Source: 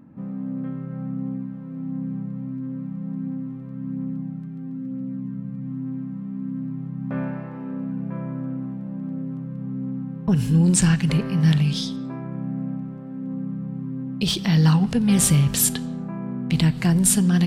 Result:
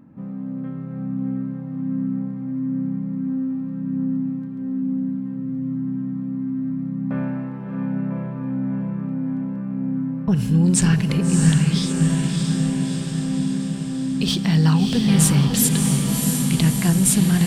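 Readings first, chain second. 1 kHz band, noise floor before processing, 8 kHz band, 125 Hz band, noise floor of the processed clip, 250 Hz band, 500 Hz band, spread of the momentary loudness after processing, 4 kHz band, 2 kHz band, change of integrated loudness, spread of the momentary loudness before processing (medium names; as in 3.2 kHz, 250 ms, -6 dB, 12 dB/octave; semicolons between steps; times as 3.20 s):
+2.0 dB, -34 dBFS, +1.5 dB, +2.0 dB, -30 dBFS, +3.5 dB, +2.0 dB, 11 LU, +2.0 dB, +2.0 dB, +2.5 dB, 15 LU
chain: echo that smears into a reverb 648 ms, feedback 66%, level -4 dB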